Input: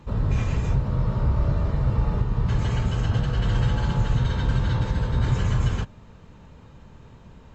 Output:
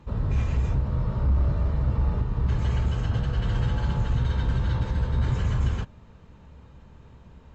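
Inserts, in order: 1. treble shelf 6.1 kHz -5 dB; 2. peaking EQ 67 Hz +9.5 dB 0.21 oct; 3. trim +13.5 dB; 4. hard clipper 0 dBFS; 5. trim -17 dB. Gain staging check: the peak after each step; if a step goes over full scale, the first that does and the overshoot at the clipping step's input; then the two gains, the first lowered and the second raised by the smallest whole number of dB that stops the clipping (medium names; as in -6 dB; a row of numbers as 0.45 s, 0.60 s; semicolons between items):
-12.0 dBFS, -8.5 dBFS, +5.0 dBFS, 0.0 dBFS, -17.0 dBFS; step 3, 5.0 dB; step 3 +8.5 dB, step 5 -12 dB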